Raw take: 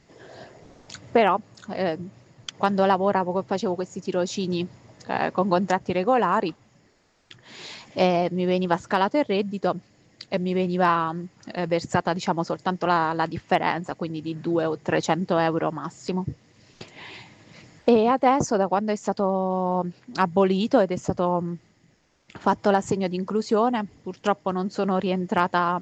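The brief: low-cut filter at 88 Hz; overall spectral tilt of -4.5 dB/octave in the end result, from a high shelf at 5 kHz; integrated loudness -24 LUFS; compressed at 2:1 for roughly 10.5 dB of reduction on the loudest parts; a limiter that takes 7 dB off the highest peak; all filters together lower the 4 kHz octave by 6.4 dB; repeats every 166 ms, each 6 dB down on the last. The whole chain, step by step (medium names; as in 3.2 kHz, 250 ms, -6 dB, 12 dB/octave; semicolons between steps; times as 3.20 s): high-pass 88 Hz; peaking EQ 4 kHz -7.5 dB; treble shelf 5 kHz -4 dB; compression 2:1, threshold -33 dBFS; peak limiter -21.5 dBFS; feedback delay 166 ms, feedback 50%, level -6 dB; trim +9.5 dB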